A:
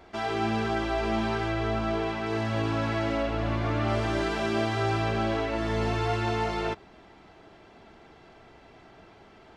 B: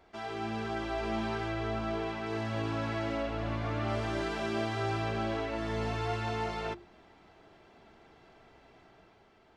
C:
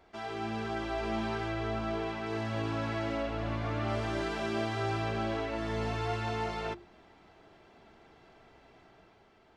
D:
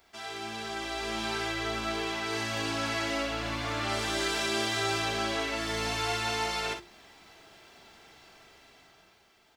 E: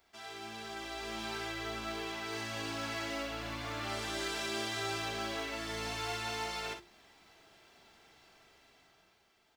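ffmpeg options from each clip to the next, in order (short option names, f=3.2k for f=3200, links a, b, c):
-af "bandreject=f=50:t=h:w=6,bandreject=f=100:t=h:w=6,bandreject=f=150:t=h:w=6,bandreject=f=200:t=h:w=6,bandreject=f=250:t=h:w=6,bandreject=f=300:t=h:w=6,bandreject=f=350:t=h:w=6,dynaudnorm=f=160:g=9:m=3.5dB,volume=-9dB"
-af anull
-af "dynaudnorm=f=260:g=9:m=5dB,aecho=1:1:43|58:0.335|0.355,crystalizer=i=9:c=0,volume=-7.5dB"
-af "acrusher=bits=6:mode=log:mix=0:aa=0.000001,volume=-7dB"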